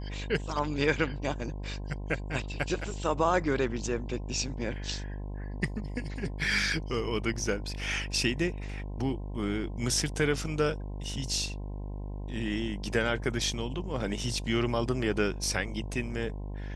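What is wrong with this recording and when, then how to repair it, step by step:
buzz 50 Hz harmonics 21 -37 dBFS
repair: de-hum 50 Hz, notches 21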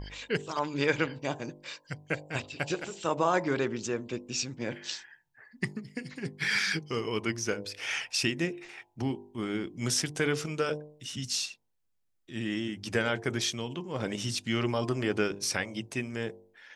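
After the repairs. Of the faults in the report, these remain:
nothing left

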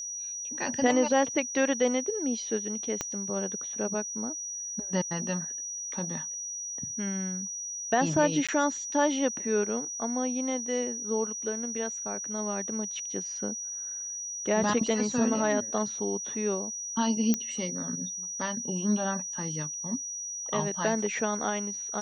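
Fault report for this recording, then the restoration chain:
whine 5.8 kHz -34 dBFS
3.01 s: pop -15 dBFS
8.47–8.49 s: dropout 16 ms
17.34 s: pop -12 dBFS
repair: de-click; band-stop 5.8 kHz, Q 30; interpolate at 8.47 s, 16 ms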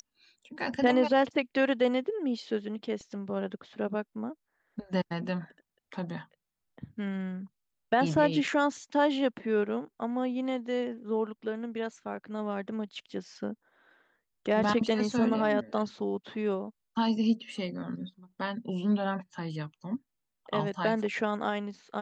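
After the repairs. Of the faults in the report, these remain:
3.01 s: pop

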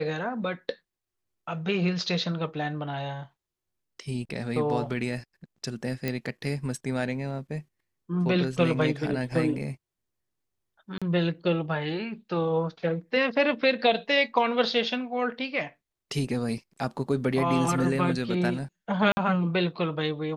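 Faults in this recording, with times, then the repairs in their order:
6.08 s: pop -15 dBFS
10.98–11.02 s: dropout 36 ms
19.12–19.17 s: dropout 50 ms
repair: de-click; interpolate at 10.98 s, 36 ms; interpolate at 19.12 s, 50 ms

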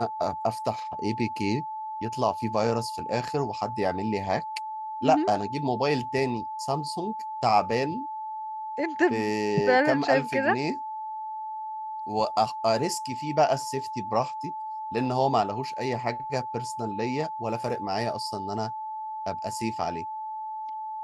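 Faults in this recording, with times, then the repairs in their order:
whine 870 Hz -32 dBFS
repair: band-stop 870 Hz, Q 30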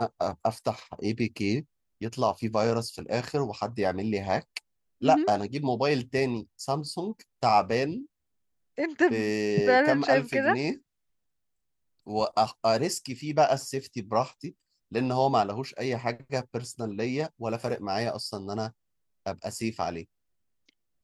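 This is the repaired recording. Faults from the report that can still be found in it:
nothing left

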